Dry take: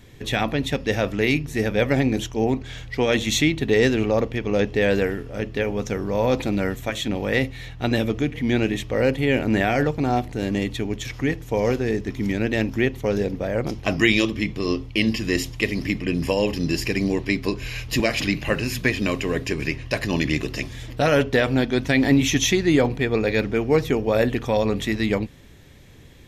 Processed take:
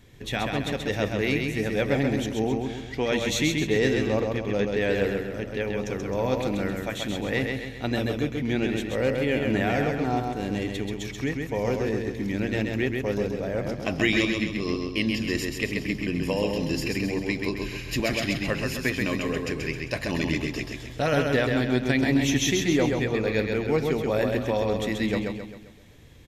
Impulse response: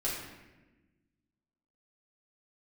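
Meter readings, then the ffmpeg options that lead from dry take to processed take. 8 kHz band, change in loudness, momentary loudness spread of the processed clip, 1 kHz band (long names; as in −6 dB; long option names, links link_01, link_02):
−3.5 dB, −4.0 dB, 7 LU, −3.5 dB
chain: -af "aecho=1:1:132|264|396|528|660|792:0.631|0.29|0.134|0.0614|0.0283|0.013,volume=-5.5dB"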